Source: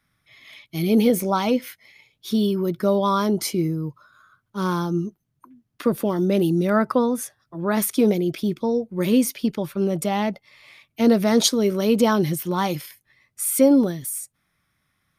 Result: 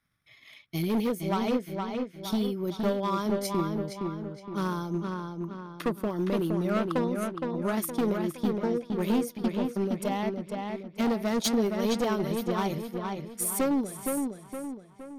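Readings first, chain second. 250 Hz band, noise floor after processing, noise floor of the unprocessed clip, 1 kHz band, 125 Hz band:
-7.5 dB, -55 dBFS, -74 dBFS, -6.0 dB, -6.5 dB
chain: transient shaper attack +7 dB, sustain -7 dB; hard clip -14.5 dBFS, distortion -9 dB; darkening echo 0.466 s, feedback 47%, low-pass 4000 Hz, level -4 dB; gain -8.5 dB

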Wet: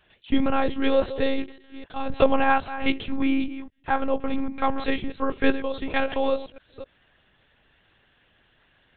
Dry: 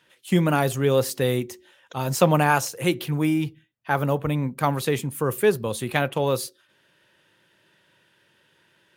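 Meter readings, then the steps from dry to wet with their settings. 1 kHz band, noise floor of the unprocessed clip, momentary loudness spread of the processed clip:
-0.5 dB, -64 dBFS, 16 LU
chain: reverse delay 0.263 s, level -13 dB; monotone LPC vocoder at 8 kHz 270 Hz

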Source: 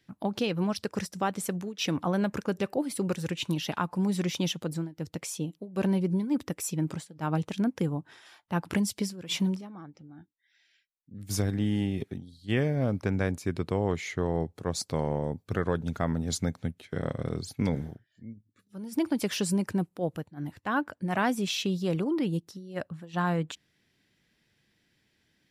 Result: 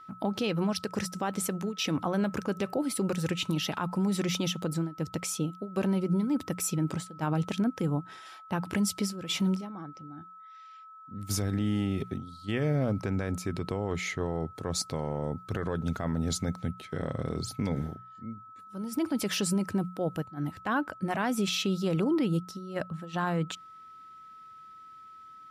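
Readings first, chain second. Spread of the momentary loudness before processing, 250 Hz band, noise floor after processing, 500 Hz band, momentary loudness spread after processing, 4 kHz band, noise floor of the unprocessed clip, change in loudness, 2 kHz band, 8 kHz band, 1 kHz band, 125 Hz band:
10 LU, -0.5 dB, -50 dBFS, -1.0 dB, 17 LU, +1.0 dB, -73 dBFS, -0.5 dB, -1.0 dB, +2.0 dB, -0.5 dB, -0.5 dB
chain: notches 60/120/180 Hz; limiter -23.5 dBFS, peak gain reduction 9.5 dB; whine 1300 Hz -50 dBFS; gain +3 dB

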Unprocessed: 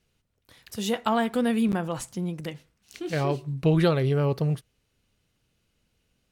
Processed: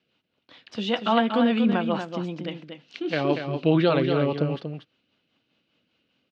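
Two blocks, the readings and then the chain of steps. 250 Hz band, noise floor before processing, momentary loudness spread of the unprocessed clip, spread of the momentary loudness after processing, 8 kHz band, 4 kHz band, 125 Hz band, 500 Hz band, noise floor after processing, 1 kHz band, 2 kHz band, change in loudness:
+3.0 dB, -74 dBFS, 12 LU, 16 LU, under -15 dB, +5.0 dB, -3.0 dB, +2.5 dB, -75 dBFS, +3.0 dB, +3.5 dB, +2.0 dB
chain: rotary speaker horn 5 Hz; speaker cabinet 260–4100 Hz, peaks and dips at 280 Hz +4 dB, 420 Hz -6 dB, 1900 Hz -4 dB, 2900 Hz +3 dB; on a send: echo 0.237 s -7 dB; on the sum: gain +7 dB

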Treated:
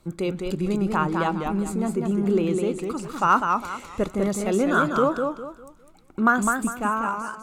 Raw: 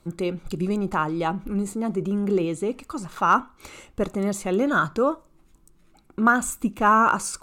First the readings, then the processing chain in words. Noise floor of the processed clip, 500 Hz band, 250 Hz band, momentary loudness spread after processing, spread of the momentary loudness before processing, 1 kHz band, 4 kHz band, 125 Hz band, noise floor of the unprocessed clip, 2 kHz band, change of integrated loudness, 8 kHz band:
-52 dBFS, +1.0 dB, +1.0 dB, 9 LU, 10 LU, -1.0 dB, +0.5 dB, +1.5 dB, -58 dBFS, -0.5 dB, 0.0 dB, -2.0 dB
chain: ending faded out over 1.25 s; warbling echo 0.202 s, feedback 31%, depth 123 cents, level -4.5 dB

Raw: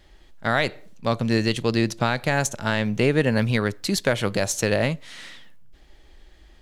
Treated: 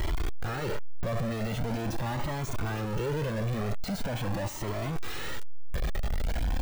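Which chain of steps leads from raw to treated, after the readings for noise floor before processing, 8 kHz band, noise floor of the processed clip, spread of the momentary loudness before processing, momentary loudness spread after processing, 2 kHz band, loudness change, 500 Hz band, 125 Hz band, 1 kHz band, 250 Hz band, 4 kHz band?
-52 dBFS, -13.0 dB, -33 dBFS, 9 LU, 5 LU, -13.0 dB, -10.0 dB, -10.5 dB, -5.0 dB, -7.5 dB, -10.0 dB, -11.5 dB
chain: infinite clipping; de-esser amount 85%; cascading flanger rising 0.43 Hz

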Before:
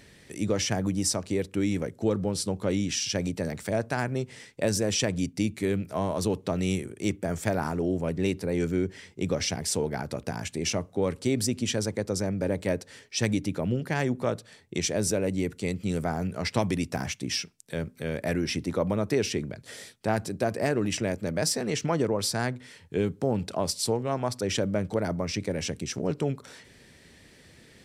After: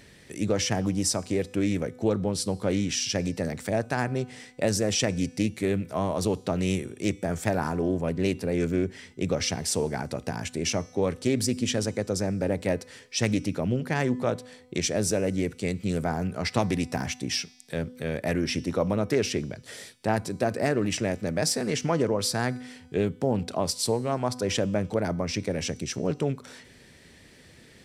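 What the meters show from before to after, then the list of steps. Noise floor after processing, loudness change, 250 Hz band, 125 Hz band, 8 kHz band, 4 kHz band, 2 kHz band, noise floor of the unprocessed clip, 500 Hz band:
-53 dBFS, +1.0 dB, +1.0 dB, +1.0 dB, +0.5 dB, +1.0 dB, +1.0 dB, -55 dBFS, +1.0 dB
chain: resonator 250 Hz, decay 1.2 s, mix 50%; Doppler distortion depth 0.13 ms; gain +7 dB

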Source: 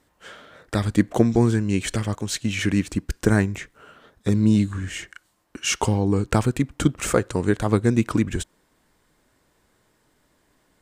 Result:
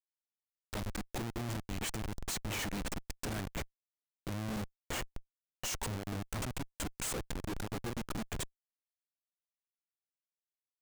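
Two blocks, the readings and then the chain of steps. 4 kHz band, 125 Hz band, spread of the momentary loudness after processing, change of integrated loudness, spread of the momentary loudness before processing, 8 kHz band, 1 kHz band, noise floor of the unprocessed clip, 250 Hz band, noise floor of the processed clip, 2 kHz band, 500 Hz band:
-10.5 dB, -18.5 dB, 6 LU, -17.0 dB, 11 LU, -10.0 dB, -13.5 dB, -66 dBFS, -21.0 dB, under -85 dBFS, -13.5 dB, -19.5 dB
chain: pre-emphasis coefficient 0.9; on a send: thin delay 0.237 s, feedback 72%, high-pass 1500 Hz, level -21 dB; on the sum: Schmitt trigger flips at -36 dBFS; gain +2.5 dB

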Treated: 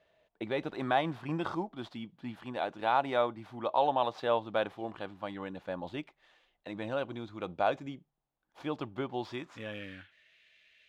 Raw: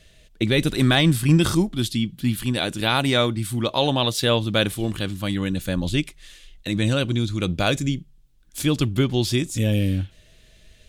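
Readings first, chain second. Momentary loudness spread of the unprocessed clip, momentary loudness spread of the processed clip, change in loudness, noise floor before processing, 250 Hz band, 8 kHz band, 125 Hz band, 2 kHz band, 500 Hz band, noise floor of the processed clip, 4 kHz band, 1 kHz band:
9 LU, 14 LU, -12.5 dB, -54 dBFS, -17.0 dB, under -30 dB, -23.5 dB, -13.0 dB, -7.5 dB, -82 dBFS, -20.5 dB, -2.0 dB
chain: median filter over 5 samples; band-pass sweep 820 Hz -> 2300 Hz, 9.16–10.37

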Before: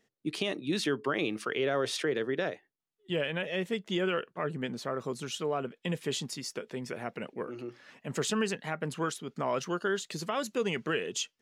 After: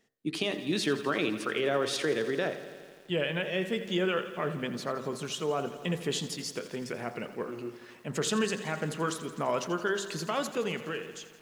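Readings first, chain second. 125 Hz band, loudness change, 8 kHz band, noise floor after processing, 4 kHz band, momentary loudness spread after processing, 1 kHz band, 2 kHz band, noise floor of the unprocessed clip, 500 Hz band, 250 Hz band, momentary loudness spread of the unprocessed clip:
+1.5 dB, +1.0 dB, +1.0 dB, -53 dBFS, +1.5 dB, 9 LU, +1.5 dB, +1.0 dB, -82 dBFS, +1.0 dB, +1.5 dB, 9 LU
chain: ending faded out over 1.01 s; de-hum 65.49 Hz, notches 32; lo-fi delay 84 ms, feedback 80%, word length 9-bit, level -14 dB; gain +1.5 dB

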